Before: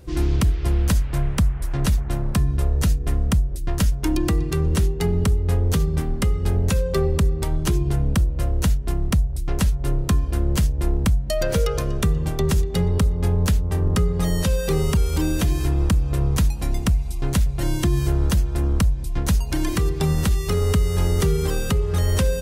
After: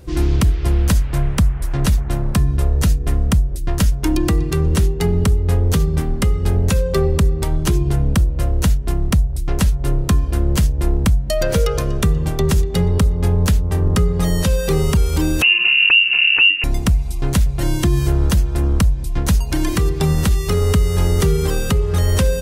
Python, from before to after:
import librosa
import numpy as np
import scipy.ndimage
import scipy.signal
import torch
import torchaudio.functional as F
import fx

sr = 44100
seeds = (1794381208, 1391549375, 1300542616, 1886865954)

y = fx.freq_invert(x, sr, carrier_hz=2800, at=(15.42, 16.64))
y = F.gain(torch.from_numpy(y), 4.0).numpy()